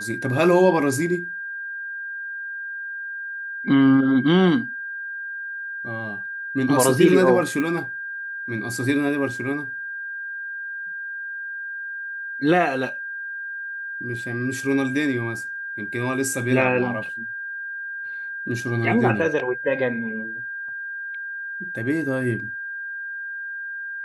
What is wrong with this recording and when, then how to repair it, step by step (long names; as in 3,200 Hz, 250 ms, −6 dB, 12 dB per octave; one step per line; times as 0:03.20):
whistle 1,600 Hz −29 dBFS
0:07.60: click −15 dBFS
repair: click removal
notch filter 1,600 Hz, Q 30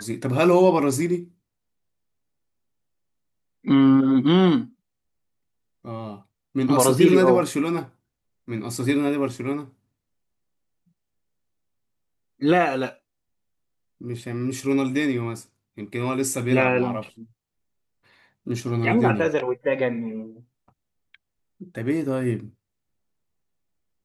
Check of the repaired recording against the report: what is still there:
none of them is left